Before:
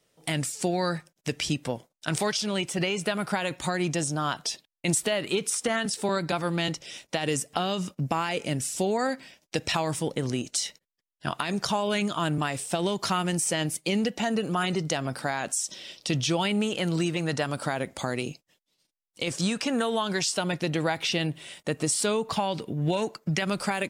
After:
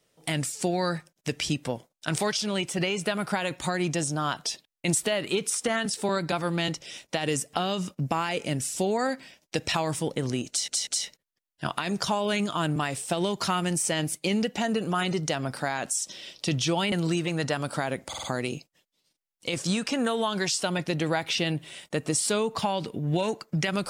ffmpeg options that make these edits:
-filter_complex "[0:a]asplit=7[a][b][c][d][e][f][g];[a]atrim=end=10.682[h];[b]atrim=start=10.488:end=10.682[i];[c]atrim=start=10.488:end=16.542[j];[d]atrim=start=16.808:end=18.022[k];[e]atrim=start=17.968:end=18.022[l];[f]atrim=start=17.968:end=18.022[m];[g]atrim=start=17.968[n];[h][i]acrossfade=d=0.004:c1=hsin:c2=hsin[o];[o][j]acrossfade=d=0.004:c1=hsin:c2=hsin[p];[p][k]acrossfade=d=0.004:c1=hsin:c2=hsin[q];[q][l]acrossfade=d=0.004:c1=hsin:c2=hsin[r];[r][m]acrossfade=d=0.004:c1=hsin:c2=hsin[s];[s][n]acrossfade=d=0.004:c1=hsin:c2=hsin"

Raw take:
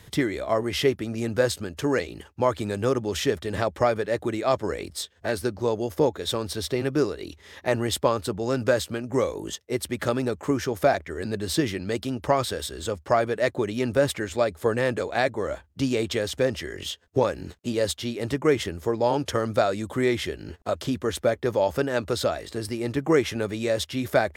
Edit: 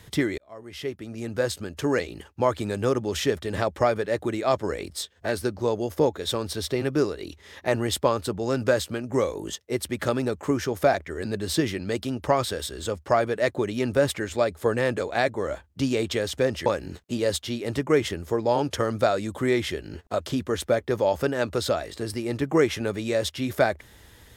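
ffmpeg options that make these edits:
-filter_complex "[0:a]asplit=3[a][b][c];[a]atrim=end=0.38,asetpts=PTS-STARTPTS,afade=t=out:st=0.376:d=0.004:c=hsin[d];[b]atrim=start=0.38:end=16.662,asetpts=PTS-STARTPTS,afade=t=in:d=1.5[e];[c]atrim=start=17.208[f];[d][e]concat=n=2:v=0:a=1[g];[g][f]acrossfade=d=0.004:c1=hsin:c2=hsin"

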